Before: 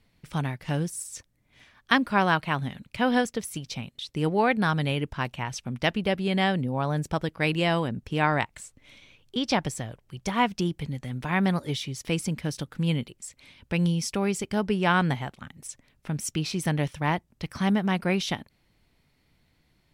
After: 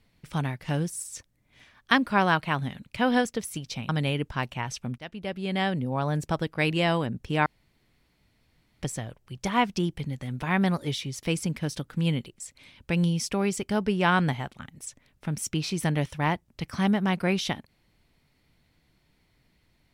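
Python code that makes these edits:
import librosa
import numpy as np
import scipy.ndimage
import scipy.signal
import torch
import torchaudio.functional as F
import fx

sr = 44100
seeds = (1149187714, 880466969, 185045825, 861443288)

y = fx.edit(x, sr, fx.cut(start_s=3.89, length_s=0.82),
    fx.fade_in_from(start_s=5.8, length_s=1.28, curve='qsin', floor_db=-21.0),
    fx.room_tone_fill(start_s=8.28, length_s=1.36), tone=tone)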